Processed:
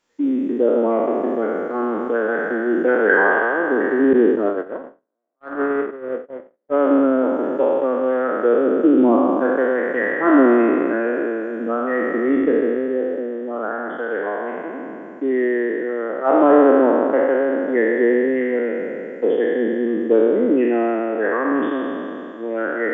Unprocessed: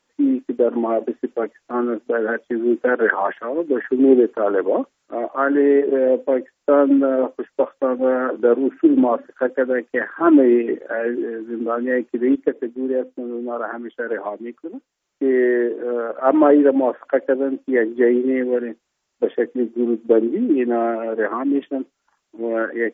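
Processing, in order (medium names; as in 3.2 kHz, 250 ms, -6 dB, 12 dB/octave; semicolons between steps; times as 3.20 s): spectral sustain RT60 2.88 s; 4.13–6.81 s: gate -11 dBFS, range -56 dB; trim -3.5 dB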